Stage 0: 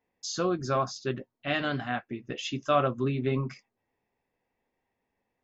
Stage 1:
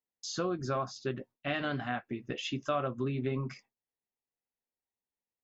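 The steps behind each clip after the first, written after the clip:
noise gate with hold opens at −45 dBFS
dynamic equaliser 6,300 Hz, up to −5 dB, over −49 dBFS, Q 0.84
downward compressor 2.5 to 1, threshold −31 dBFS, peak gain reduction 8.5 dB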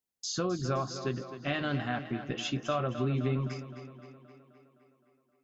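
bass and treble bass +5 dB, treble +5 dB
on a send: tape delay 260 ms, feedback 66%, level −10 dB, low-pass 4,900 Hz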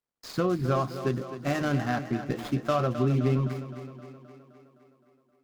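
running median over 15 samples
level +5.5 dB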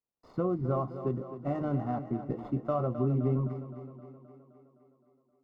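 Savitzky-Golay smoothing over 65 samples
level −3.5 dB

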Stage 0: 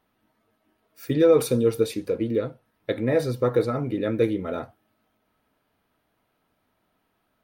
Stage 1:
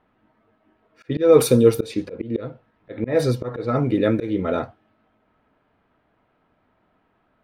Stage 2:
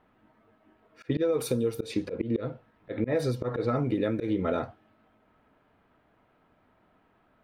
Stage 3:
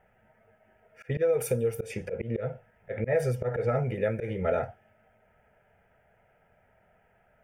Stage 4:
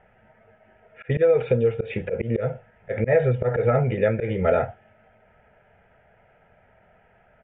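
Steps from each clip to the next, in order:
volume swells 201 ms; low-pass that shuts in the quiet parts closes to 2,200 Hz, open at −20 dBFS; level +7 dB
downward compressor 20 to 1, threshold −23 dBFS, peak gain reduction 16.5 dB
phaser with its sweep stopped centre 1,100 Hz, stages 6; level +4 dB
downsampling to 8,000 Hz; level +7 dB

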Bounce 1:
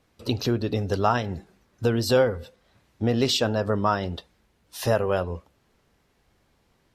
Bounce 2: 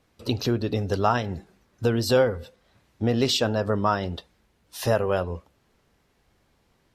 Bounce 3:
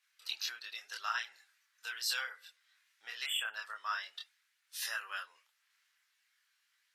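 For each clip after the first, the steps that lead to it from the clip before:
no processing that can be heard
multi-voice chorus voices 2, 0.43 Hz, delay 26 ms, depth 2 ms; Chebyshev high-pass filter 1,600 Hz, order 3; time-frequency box erased 0:03.26–0:03.55, 3,500–7,300 Hz

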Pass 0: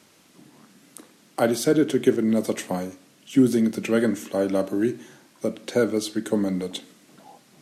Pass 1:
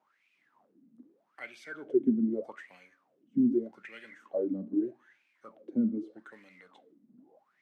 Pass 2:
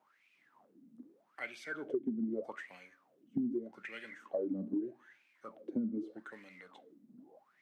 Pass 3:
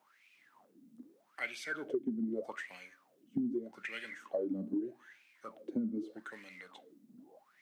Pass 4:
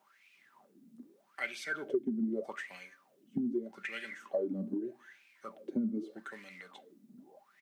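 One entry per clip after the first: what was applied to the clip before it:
low-shelf EQ 170 Hz +10.5 dB; floating-point word with a short mantissa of 4 bits; LFO wah 0.81 Hz 220–2,500 Hz, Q 11
downward compressor 12 to 1, threshold −33 dBFS, peak gain reduction 14 dB; level +1.5 dB
high-shelf EQ 2,100 Hz +8.5 dB
comb filter 5.1 ms, depth 34%; level +1 dB

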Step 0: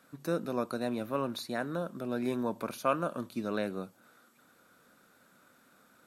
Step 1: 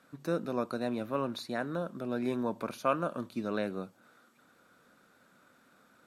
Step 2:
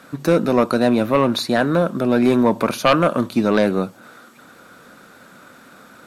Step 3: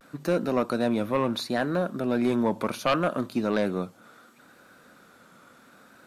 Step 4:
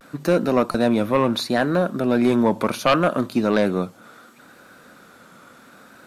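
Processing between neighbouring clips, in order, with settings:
high-shelf EQ 9,300 Hz −10.5 dB
sine wavefolder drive 7 dB, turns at −15 dBFS; level +7.5 dB
pitch vibrato 0.7 Hz 65 cents; level −9 dB
buffer that repeats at 0:00.71, samples 256, times 5; level +6.5 dB

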